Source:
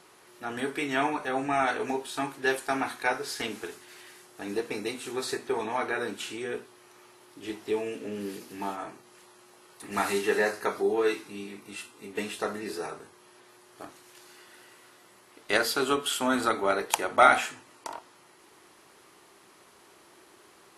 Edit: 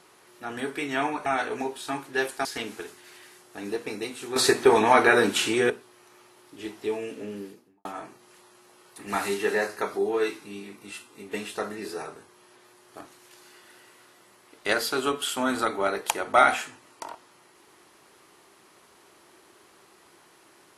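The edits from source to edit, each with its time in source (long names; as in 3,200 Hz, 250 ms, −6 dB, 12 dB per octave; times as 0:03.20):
0:01.26–0:01.55: remove
0:02.74–0:03.29: remove
0:05.20–0:06.54: clip gain +12 dB
0:08.04–0:08.69: fade out and dull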